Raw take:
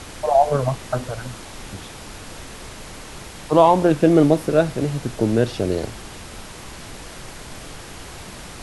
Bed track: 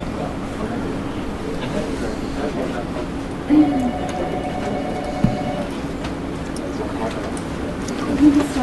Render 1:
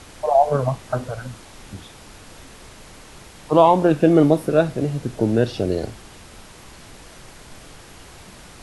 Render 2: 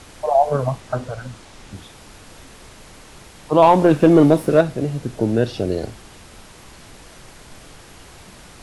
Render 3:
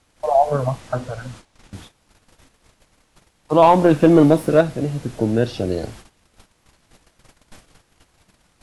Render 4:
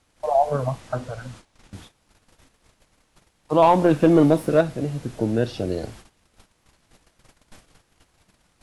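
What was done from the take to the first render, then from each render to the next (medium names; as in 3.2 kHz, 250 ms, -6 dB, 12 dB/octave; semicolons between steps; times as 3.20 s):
noise print and reduce 6 dB
0.80–1.74 s: low-pass 9.4 kHz; 3.62–4.61 s: waveshaping leveller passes 1
gate -39 dBFS, range -19 dB; band-stop 400 Hz, Q 12
trim -3.5 dB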